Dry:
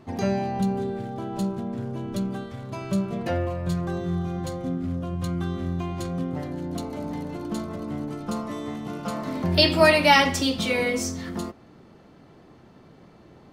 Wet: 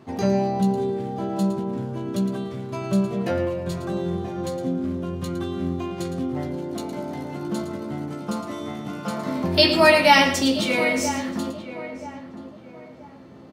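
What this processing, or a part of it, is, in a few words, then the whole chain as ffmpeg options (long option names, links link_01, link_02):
slapback doubling: -filter_complex "[0:a]asplit=3[link_01][link_02][link_03];[link_02]adelay=15,volume=-6dB[link_04];[link_03]adelay=112,volume=-10dB[link_05];[link_01][link_04][link_05]amix=inputs=3:normalize=0,highpass=94,asplit=2[link_06][link_07];[link_07]adelay=980,lowpass=frequency=1300:poles=1,volume=-11.5dB,asplit=2[link_08][link_09];[link_09]adelay=980,lowpass=frequency=1300:poles=1,volume=0.38,asplit=2[link_10][link_11];[link_11]adelay=980,lowpass=frequency=1300:poles=1,volume=0.38,asplit=2[link_12][link_13];[link_13]adelay=980,lowpass=frequency=1300:poles=1,volume=0.38[link_14];[link_06][link_08][link_10][link_12][link_14]amix=inputs=5:normalize=0,volume=1dB"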